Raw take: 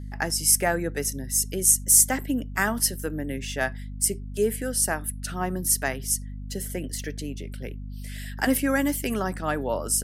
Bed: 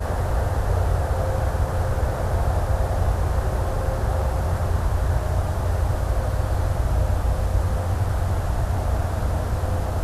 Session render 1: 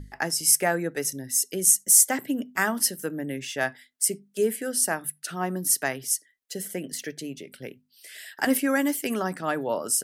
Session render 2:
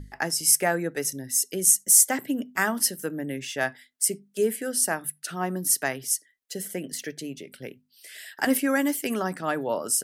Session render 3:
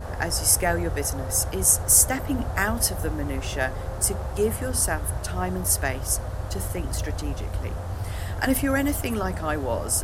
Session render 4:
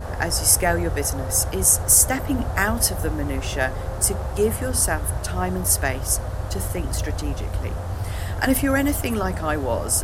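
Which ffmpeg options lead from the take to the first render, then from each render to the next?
-af "bandreject=f=50:t=h:w=6,bandreject=f=100:t=h:w=6,bandreject=f=150:t=h:w=6,bandreject=f=200:t=h:w=6,bandreject=f=250:t=h:w=6"
-af anull
-filter_complex "[1:a]volume=-8dB[a];[0:a][a]amix=inputs=2:normalize=0"
-af "volume=3dB,alimiter=limit=-3dB:level=0:latency=1"

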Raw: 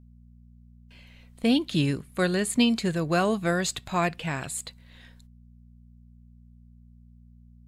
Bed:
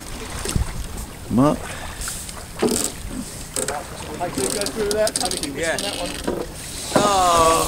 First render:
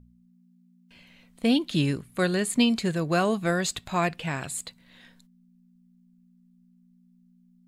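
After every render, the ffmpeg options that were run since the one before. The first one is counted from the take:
-af "bandreject=f=60:t=h:w=4,bandreject=f=120:t=h:w=4"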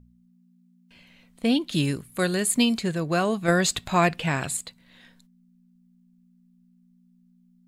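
-filter_complex "[0:a]asettb=1/sr,asplit=3[a][b][c];[a]atrim=end=1.724[d];[b]atrim=start=1.72:end=2.78,asetpts=PTS-STARTPTS,afade=t=in:d=0.004:c=qsin,afade=t=out:st=1.056:d=0.004:c=qsin,highshelf=f=8.1k:g=12[e];[c]atrim=start=2.776[f];[d][e]acrossfade=d=0.004:c1=hsin:c2=qsin[g];[g][f]acrossfade=d=0.004:c1=qsin:c2=hsin,asettb=1/sr,asplit=3[h][i][j];[h]atrim=end=3.484[k];[i]atrim=start=3.48:end=4.57,asetpts=PTS-STARTPTS,afade=t=in:d=0.004:c=qsin,afade=t=out:st=1.086:d=0.004:c=qsin,acontrast=26[l];[j]atrim=start=4.566[m];[k][l]acrossfade=d=0.004:c1=hsin:c2=qsin[n];[n][m]acrossfade=d=0.004:c1=qsin:c2=hsin"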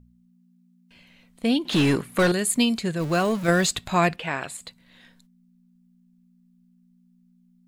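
-filter_complex "[0:a]asettb=1/sr,asplit=3[a][b][c];[a]atrim=end=1.654[d];[b]atrim=start=1.65:end=2.32,asetpts=PTS-STARTPTS,afade=t=in:d=0.004:c=qsin,afade=t=out:st=0.666:d=0.004:c=qsin,asplit=2[e][f];[f]highpass=f=720:p=1,volume=26dB,asoftclip=type=tanh:threshold=-10dB[g];[e][g]amix=inputs=2:normalize=0,lowpass=f=1.5k:p=1,volume=-6dB[h];[c]atrim=start=2.316[i];[d][h]acrossfade=d=0.004:c1=hsin:c2=qsin[j];[j][i]acrossfade=d=0.004:c1=qsin:c2=hsin,asettb=1/sr,asplit=3[k][l][m];[k]atrim=end=3.004[n];[l]atrim=start=3:end=3.66,asetpts=PTS-STARTPTS,afade=t=in:d=0.004:c=qsin,afade=t=out:st=0.656:d=0.004:c=qsin,aeval=exprs='val(0)+0.5*0.0266*sgn(val(0))':c=same[o];[m]atrim=start=3.656[p];[n][o]acrossfade=d=0.004:c1=hsin:c2=qsin[q];[q][p]acrossfade=d=0.004:c1=qsin:c2=hsin,asettb=1/sr,asplit=3[r][s][t];[r]atrim=end=4.164[u];[s]atrim=start=4.16:end=4.61,asetpts=PTS-STARTPTS,afade=t=in:d=0.004:c=qsin,afade=t=out:st=0.446:d=0.004:c=qsin,bass=f=250:g=-12,treble=f=4k:g=-9[v];[t]atrim=start=4.606[w];[u][v]acrossfade=d=0.004:c1=hsin:c2=qsin[x];[x][w]acrossfade=d=0.004:c1=qsin:c2=hsin"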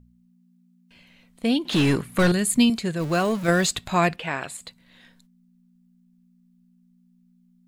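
-filter_complex "[0:a]asettb=1/sr,asplit=3[a][b][c];[a]atrim=end=1.754[d];[b]atrim=start=1.75:end=2.7,asetpts=PTS-STARTPTS,afade=t=in:d=0.004:c=qsin,afade=t=out:st=0.946:d=0.004:c=qsin,asubboost=boost=10:cutoff=220[e];[c]atrim=start=2.696[f];[d][e]acrossfade=d=0.004:c1=hsin:c2=qsin[g];[g][f]acrossfade=d=0.004:c1=qsin:c2=hsin"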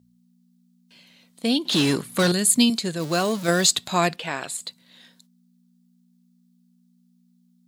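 -af "highpass=160,highshelf=f=3.1k:t=q:w=1.5:g=6"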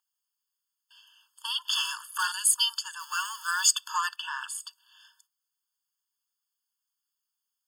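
-filter_complex "[0:a]acrossover=split=1200[a][b];[a]aeval=exprs='clip(val(0),-1,0.0422)':c=same[c];[c][b]amix=inputs=2:normalize=0,afftfilt=real='re*eq(mod(floor(b*sr/1024/890),2),1)':imag='im*eq(mod(floor(b*sr/1024/890),2),1)':win_size=1024:overlap=0.75"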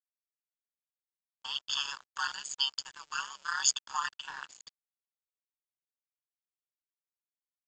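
-af "aresample=16000,aeval=exprs='sgn(val(0))*max(abs(val(0))-0.00668,0)':c=same,aresample=44100,tremolo=f=140:d=0.857"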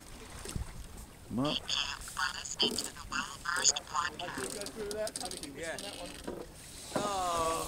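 -filter_complex "[1:a]volume=-17dB[a];[0:a][a]amix=inputs=2:normalize=0"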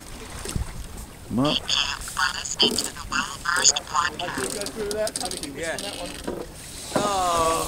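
-af "volume=10.5dB,alimiter=limit=-2dB:level=0:latency=1"

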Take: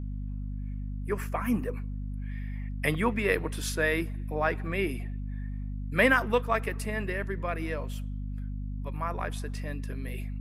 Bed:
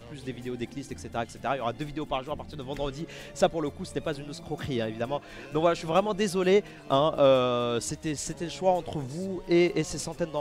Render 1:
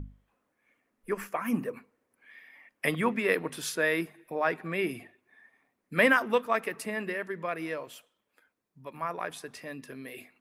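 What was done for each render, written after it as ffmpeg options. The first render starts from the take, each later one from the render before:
-af "bandreject=f=50:t=h:w=6,bandreject=f=100:t=h:w=6,bandreject=f=150:t=h:w=6,bandreject=f=200:t=h:w=6,bandreject=f=250:t=h:w=6"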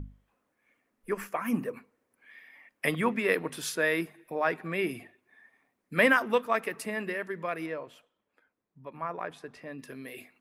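-filter_complex "[0:a]asettb=1/sr,asplit=3[a][b][c];[a]atrim=end=7.664[d];[b]atrim=start=7.66:end=9.79,asetpts=PTS-STARTPTS,afade=t=in:d=0.004:c=qsin,afade=t=out:st=2.126:d=0.004:c=qsin,lowpass=f=1.7k:p=1[e];[c]atrim=start=9.786[f];[d][e]acrossfade=d=0.004:c1=hsin:c2=qsin[g];[g][f]acrossfade=d=0.004:c1=qsin:c2=hsin"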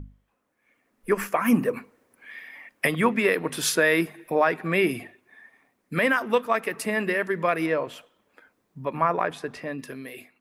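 -af "dynaudnorm=f=250:g=9:m=15dB,alimiter=limit=-10dB:level=0:latency=1:release=327"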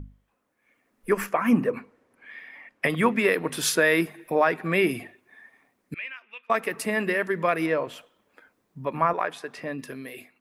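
-filter_complex "[0:a]asettb=1/sr,asplit=3[a][b][c];[a]atrim=end=1.264[d];[b]atrim=start=1.26:end=2.9,asetpts=PTS-STARTPTS,afade=t=in:d=0.004:c=qsin,afade=t=out:st=1.636:d=0.004:c=qsin,aemphasis=mode=reproduction:type=50kf[e];[c]atrim=start=2.896[f];[d][e]acrossfade=d=0.004:c1=hsin:c2=qsin[g];[g][f]acrossfade=d=0.004:c1=qsin:c2=hsin,asettb=1/sr,asplit=3[h][i][j];[h]atrim=end=5.944[k];[i]atrim=start=5.94:end=6.5,asetpts=PTS-STARTPTS,afade=t=in:d=0.004:c=qsin,afade=t=out:st=0.556:d=0.004:c=qsin,bandpass=f=2.5k:t=q:w=9.1[l];[j]atrim=start=6.496[m];[k][l]acrossfade=d=0.004:c1=hsin:c2=qsin[n];[n][m]acrossfade=d=0.004:c1=qsin:c2=hsin,asettb=1/sr,asplit=3[o][p][q];[o]atrim=end=9.134[r];[p]atrim=start=9.13:end=9.58,asetpts=PTS-STARTPTS,afade=t=in:d=0.004:c=qsin,afade=t=out:st=0.446:d=0.004:c=qsin,highpass=f=540:p=1[s];[q]atrim=start=9.576[t];[r][s]acrossfade=d=0.004:c1=hsin:c2=qsin[u];[u][t]acrossfade=d=0.004:c1=qsin:c2=hsin"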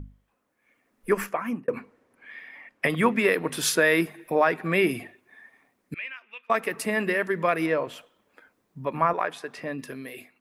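-filter_complex "[0:a]asplit=2[a][b];[a]atrim=end=1.68,asetpts=PTS-STARTPTS,afade=t=out:st=1.17:d=0.51[c];[b]atrim=start=1.68,asetpts=PTS-STARTPTS,afade=t=in:d=0.004:c=hsin[d];[c][d]concat=n=2:v=0:a=1"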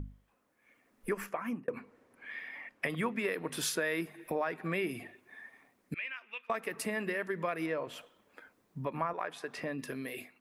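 -af "acompressor=threshold=-36dB:ratio=2.5"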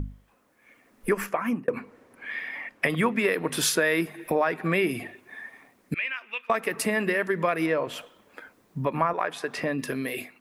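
-af "volume=9.5dB"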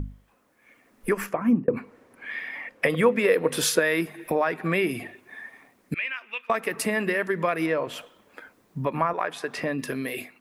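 -filter_complex "[0:a]asplit=3[a][b][c];[a]afade=t=out:st=1.33:d=0.02[d];[b]tiltshelf=f=700:g=9.5,afade=t=in:st=1.33:d=0.02,afade=t=out:st=1.76:d=0.02[e];[c]afade=t=in:st=1.76:d=0.02[f];[d][e][f]amix=inputs=3:normalize=0,asettb=1/sr,asplit=3[g][h][i];[g]atrim=end=2.674[j];[h]atrim=start=2.67:end=3.79,asetpts=PTS-STARTPTS,afade=t=in:d=0.004:c=qsin,afade=t=out:st=1.116:d=0.004:c=qsin,equalizer=f=500:t=o:w=0.25:g=13[k];[i]atrim=start=3.786[l];[j][k]acrossfade=d=0.004:c1=hsin:c2=qsin[m];[m][l]acrossfade=d=0.004:c1=qsin:c2=hsin"

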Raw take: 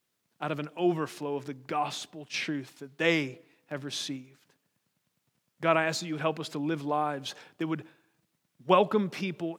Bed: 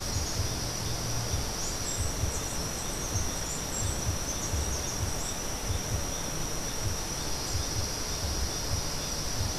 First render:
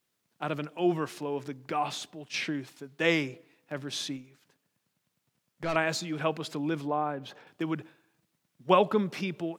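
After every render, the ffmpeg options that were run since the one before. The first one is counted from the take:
-filter_complex "[0:a]asettb=1/sr,asplit=3[a][b][c];[a]atrim=end=4.174[d];[b]atrim=start=4.17:end=5.76,asetpts=PTS-STARTPTS,afade=t=in:d=0.004:c=qsin,afade=t=out:st=1.586:d=0.004:c=qsin,aeval=exprs='(tanh(20*val(0)+0.35)-tanh(0.35))/20':c=same[e];[c]atrim=start=5.756[f];[d][e]acrossfade=d=0.004:c1=hsin:c2=qsin[g];[g][f]acrossfade=d=0.004:c1=qsin:c2=hsin,asettb=1/sr,asplit=3[h][i][j];[h]atrim=end=6.874[k];[i]atrim=start=6.87:end=7.47,asetpts=PTS-STARTPTS,afade=t=in:d=0.004:c=qsin,afade=t=out:st=0.596:d=0.004:c=qsin,equalizer=f=7.9k:w=0.4:g=-15[l];[j]atrim=start=7.466[m];[k][l]acrossfade=d=0.004:c1=hsin:c2=qsin[n];[n][m]acrossfade=d=0.004:c1=qsin:c2=hsin"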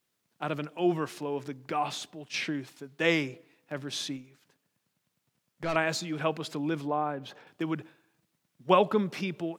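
-af anull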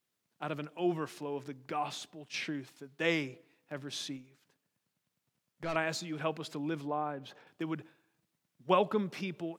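-af "volume=-5dB"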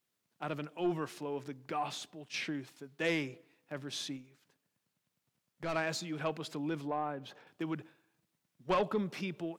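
-af "asoftclip=type=tanh:threshold=-23.5dB"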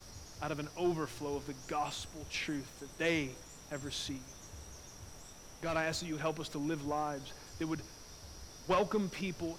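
-filter_complex "[1:a]volume=-19.5dB[a];[0:a][a]amix=inputs=2:normalize=0"

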